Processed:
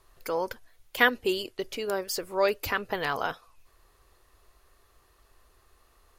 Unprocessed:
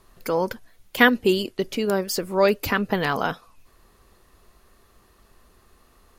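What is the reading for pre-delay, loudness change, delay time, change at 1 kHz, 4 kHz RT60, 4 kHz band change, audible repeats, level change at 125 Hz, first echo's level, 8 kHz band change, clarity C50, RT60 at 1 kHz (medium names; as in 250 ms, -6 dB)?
no reverb, -6.5 dB, no echo, -5.0 dB, no reverb, -4.5 dB, no echo, -13.5 dB, no echo, -4.5 dB, no reverb, no reverb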